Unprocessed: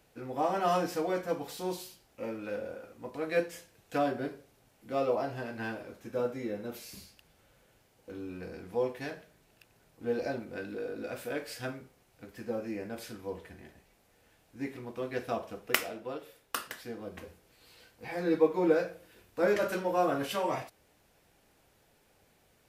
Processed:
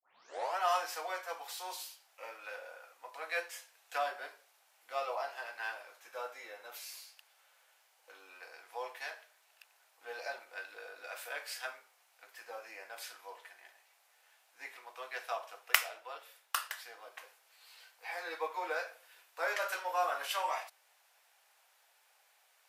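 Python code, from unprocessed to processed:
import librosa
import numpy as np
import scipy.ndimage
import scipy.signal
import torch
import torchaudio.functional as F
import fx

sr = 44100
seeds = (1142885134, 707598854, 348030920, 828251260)

y = fx.tape_start_head(x, sr, length_s=0.58)
y = scipy.signal.sosfilt(scipy.signal.butter(4, 760.0, 'highpass', fs=sr, output='sos'), y)
y = F.gain(torch.from_numpy(y), 1.0).numpy()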